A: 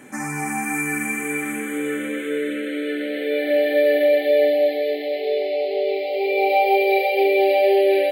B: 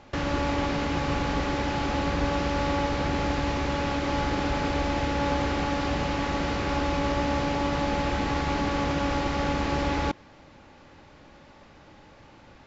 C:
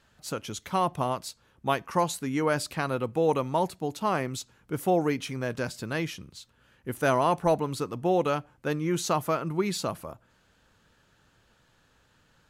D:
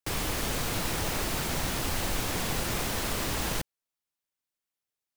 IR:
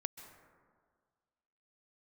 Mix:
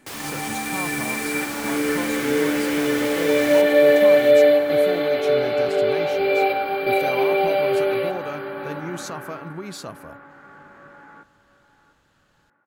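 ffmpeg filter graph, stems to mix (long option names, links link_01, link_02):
-filter_complex "[0:a]dynaudnorm=framelen=390:gausssize=9:maxgain=11.5dB,volume=-4dB,asplit=2[link_01][link_02];[link_02]volume=-13dB[link_03];[1:a]highpass=frequency=130:width=0.5412,highpass=frequency=130:width=1.3066,flanger=delay=17:depth=5:speed=0.18,lowpass=frequency=1500:width_type=q:width=5,adelay=1100,volume=-8.5dB,afade=type=out:start_time=9:duration=0.63:silence=0.298538,asplit=2[link_04][link_05];[link_05]volume=-14.5dB[link_06];[2:a]alimiter=limit=-22dB:level=0:latency=1:release=338,volume=-0.5dB,asplit=2[link_07][link_08];[3:a]highpass=frequency=370:poles=1,volume=-1dB,asplit=2[link_09][link_10];[link_10]volume=-9.5dB[link_11];[link_08]apad=whole_len=357943[link_12];[link_01][link_12]sidechaingate=range=-7dB:threshold=-57dB:ratio=16:detection=peak[link_13];[link_03][link_06][link_11]amix=inputs=3:normalize=0,aecho=0:1:695|1390|2085|2780:1|0.31|0.0961|0.0298[link_14];[link_13][link_04][link_07][link_09][link_14]amix=inputs=5:normalize=0"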